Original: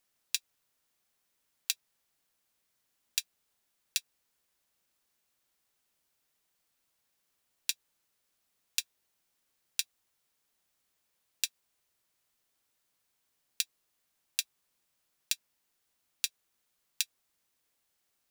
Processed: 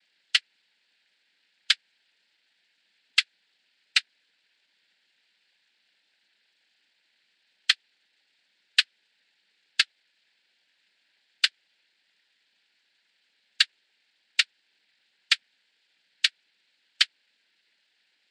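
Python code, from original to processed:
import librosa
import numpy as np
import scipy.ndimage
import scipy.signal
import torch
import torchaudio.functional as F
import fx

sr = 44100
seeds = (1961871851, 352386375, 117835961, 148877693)

y = fx.brickwall_bandpass(x, sr, low_hz=170.0, high_hz=4600.0)
y = fx.high_shelf_res(y, sr, hz=1800.0, db=7.5, q=3.0)
y = fx.noise_vocoder(y, sr, seeds[0], bands=8)
y = y * librosa.db_to_amplitude(5.0)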